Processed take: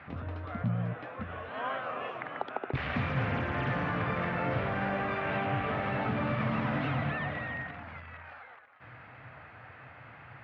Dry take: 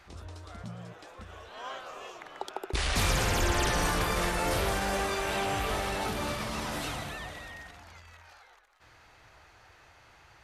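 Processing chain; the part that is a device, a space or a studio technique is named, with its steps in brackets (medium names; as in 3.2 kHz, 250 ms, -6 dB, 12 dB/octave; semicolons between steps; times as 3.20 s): bass amplifier (compression 5:1, threshold -36 dBFS, peak gain reduction 12 dB; cabinet simulation 89–2400 Hz, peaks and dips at 130 Hz +10 dB, 250 Hz +7 dB, 370 Hz -8 dB, 900 Hz -4 dB); trim +8.5 dB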